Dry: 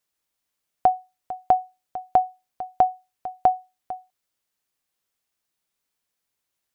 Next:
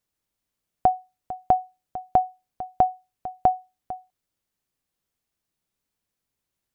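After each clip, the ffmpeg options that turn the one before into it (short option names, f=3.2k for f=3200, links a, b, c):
-af "lowshelf=f=370:g=11.5,volume=-3.5dB"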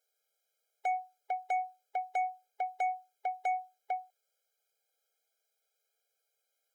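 -af "alimiter=limit=-16dB:level=0:latency=1:release=103,asoftclip=type=tanh:threshold=-32.5dB,afftfilt=real='re*eq(mod(floor(b*sr/1024/420),2),1)':imag='im*eq(mod(floor(b*sr/1024/420),2),1)':win_size=1024:overlap=0.75,volume=4.5dB"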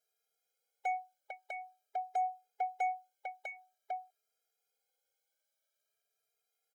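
-filter_complex "[0:a]asplit=2[a][b];[b]adelay=2.5,afreqshift=0.48[c];[a][c]amix=inputs=2:normalize=1"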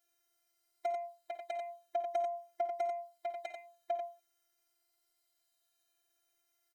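-filter_complex "[0:a]acompressor=threshold=-38dB:ratio=6,afftfilt=real='hypot(re,im)*cos(PI*b)':imag='0':win_size=512:overlap=0.75,asplit=2[a][b];[b]aecho=0:1:53|64|91:0.178|0.133|0.562[c];[a][c]amix=inputs=2:normalize=0,volume=8.5dB"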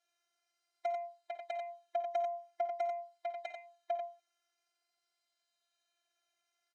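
-af "highpass=530,lowpass=5.5k,volume=1dB"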